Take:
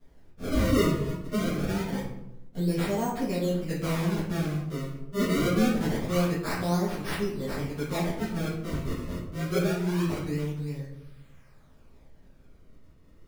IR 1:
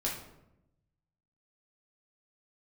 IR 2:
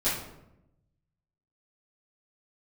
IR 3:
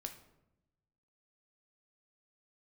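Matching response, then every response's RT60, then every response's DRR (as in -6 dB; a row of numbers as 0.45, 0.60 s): 2; 0.85, 0.85, 0.90 s; -4.0, -13.0, 5.0 dB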